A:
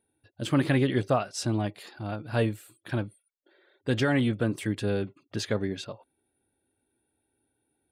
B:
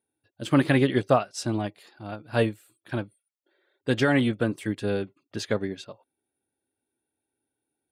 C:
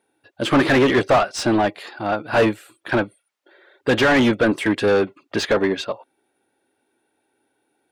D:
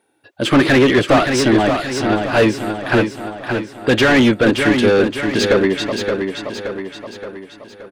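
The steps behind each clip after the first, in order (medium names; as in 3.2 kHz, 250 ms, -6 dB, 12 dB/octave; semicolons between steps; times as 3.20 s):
high-pass 140 Hz 6 dB/octave; upward expansion 1.5:1, over -45 dBFS; trim +5.5 dB
overdrive pedal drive 28 dB, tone 1.7 kHz, clips at -6.5 dBFS
feedback delay 573 ms, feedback 48%, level -6 dB; dynamic bell 880 Hz, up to -5 dB, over -31 dBFS, Q 0.92; trim +5 dB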